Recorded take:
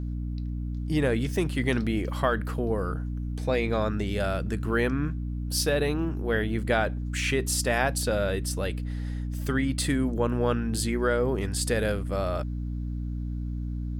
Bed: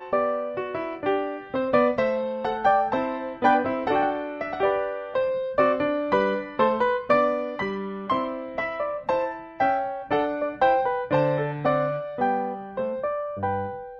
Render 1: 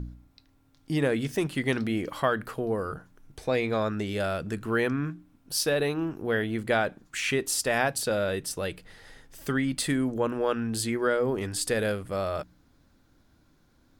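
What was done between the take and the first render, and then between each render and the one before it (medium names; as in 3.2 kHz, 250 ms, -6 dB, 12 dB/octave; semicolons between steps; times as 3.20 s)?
de-hum 60 Hz, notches 5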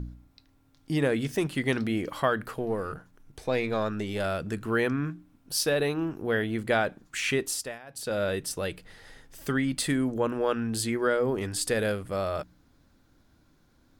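2.58–4.25 s: partial rectifier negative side -3 dB; 7.41–8.24 s: dip -23 dB, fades 0.38 s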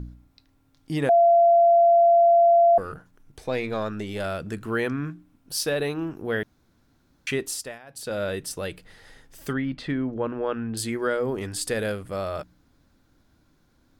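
1.09–2.78 s: bleep 684 Hz -13 dBFS; 6.43–7.27 s: room tone; 9.53–10.77 s: distance through air 260 m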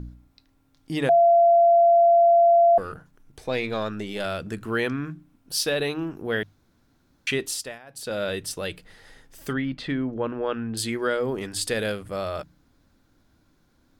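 hum notches 50/100/150 Hz; dynamic bell 3.4 kHz, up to +6 dB, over -44 dBFS, Q 1.2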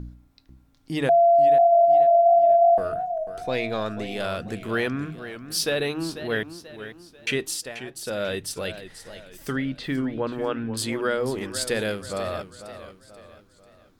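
modulated delay 489 ms, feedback 43%, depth 132 cents, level -12 dB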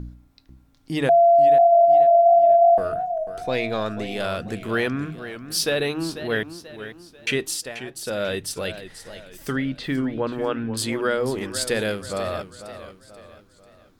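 trim +2 dB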